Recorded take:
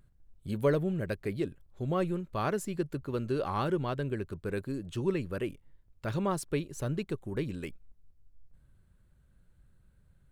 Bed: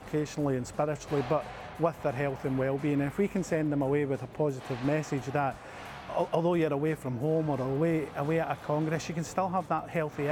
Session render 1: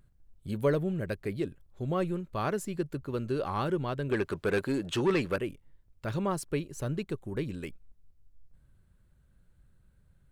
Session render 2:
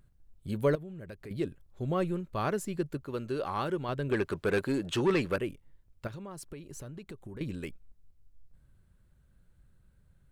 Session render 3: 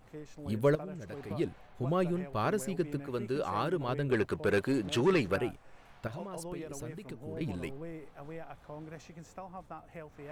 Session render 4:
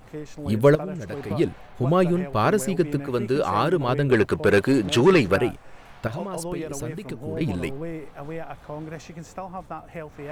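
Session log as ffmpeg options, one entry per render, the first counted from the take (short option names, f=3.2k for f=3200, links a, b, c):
-filter_complex "[0:a]asettb=1/sr,asplit=3[a][b][c];[a]atrim=end=4.094[d];[b]atrim=start=4.09:end=5.36,asetpts=PTS-STARTPTS,afade=t=in:d=0.004:c=qsin,afade=t=out:st=1.266:d=0.004:c=qsin,asplit=2[e][f];[f]highpass=f=720:p=1,volume=21dB,asoftclip=type=tanh:threshold=-17dB[g];[e][g]amix=inputs=2:normalize=0,lowpass=f=4.3k:p=1,volume=-6dB[h];[c]atrim=start=5.356[i];[d][h]acrossfade=d=0.004:c1=hsin:c2=qsin[j];[j][i]acrossfade=d=0.004:c1=qsin:c2=hsin,asettb=1/sr,asplit=3[k][l][m];[k]atrim=end=6.244[n];[l]atrim=start=6.24:end=6.81,asetpts=PTS-STARTPTS,afade=t=in:d=0.004:c=qsin,afade=t=out:st=0.566:d=0.004:c=qsin,bandreject=f=3.6k:w=13[o];[m]atrim=start=6.806[p];[n][o]acrossfade=d=0.004:c1=hsin:c2=qsin[q];[q][p]acrossfade=d=0.004:c1=qsin:c2=hsin"
-filter_complex "[0:a]asettb=1/sr,asplit=3[a][b][c];[a]atrim=end=0.754[d];[b]atrim=start=0.75:end=1.31,asetpts=PTS-STARTPTS,afade=t=in:d=0.004:c=qsin,afade=t=out:st=0.556:d=0.004:c=qsin,acompressor=threshold=-44dB:ratio=3:attack=3.2:release=140:knee=1:detection=peak[e];[c]atrim=start=1.306[f];[d][e]acrossfade=d=0.004:c1=hsin:c2=qsin[g];[g][f]acrossfade=d=0.004:c1=qsin:c2=hsin,asettb=1/sr,asplit=3[h][i][j];[h]atrim=end=2.974[k];[i]atrim=start=2.97:end=3.89,asetpts=PTS-STARTPTS,afade=t=in:d=0.004:c=qsin,afade=t=out:st=0.916:d=0.004:c=qsin,lowshelf=f=260:g=-6.5[l];[j]atrim=start=3.886[m];[k][l]acrossfade=d=0.004:c1=hsin:c2=qsin[n];[n][m]acrossfade=d=0.004:c1=qsin:c2=hsin,asettb=1/sr,asplit=3[o][p][q];[o]atrim=end=6.074[r];[p]atrim=start=6.07:end=7.41,asetpts=PTS-STARTPTS,afade=t=in:d=0.004:c=qsin,afade=t=out:st=1.336:d=0.004:c=qsin,acompressor=threshold=-39dB:ratio=16:attack=3.2:release=140:knee=1:detection=peak[s];[q]atrim=start=7.406[t];[r][s]acrossfade=d=0.004:c1=hsin:c2=qsin[u];[u][t]acrossfade=d=0.004:c1=qsin:c2=hsin"
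-filter_complex "[1:a]volume=-16dB[a];[0:a][a]amix=inputs=2:normalize=0"
-af "volume=10.5dB"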